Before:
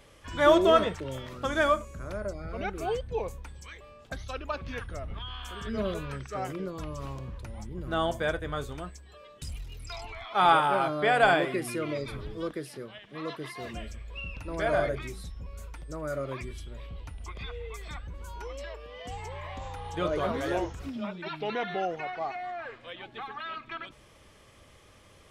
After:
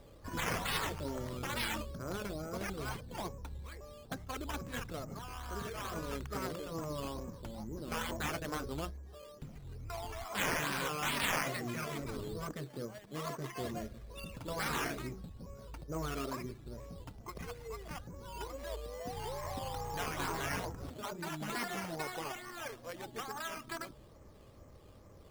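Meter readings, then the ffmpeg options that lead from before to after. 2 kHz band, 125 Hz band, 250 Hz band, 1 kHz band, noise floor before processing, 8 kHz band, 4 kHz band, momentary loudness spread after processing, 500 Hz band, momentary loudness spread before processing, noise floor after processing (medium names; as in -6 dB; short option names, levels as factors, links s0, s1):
-6.5 dB, -4.0 dB, -7.0 dB, -10.5 dB, -56 dBFS, +4.0 dB, -4.0 dB, 14 LU, -12.5 dB, 19 LU, -56 dBFS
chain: -af "adynamicsmooth=sensitivity=3:basefreq=1000,afftfilt=real='re*lt(hypot(re,im),0.0891)':imag='im*lt(hypot(re,im),0.0891)':win_size=1024:overlap=0.75,acrusher=samples=9:mix=1:aa=0.000001:lfo=1:lforange=5.4:lforate=2.3,volume=1.26"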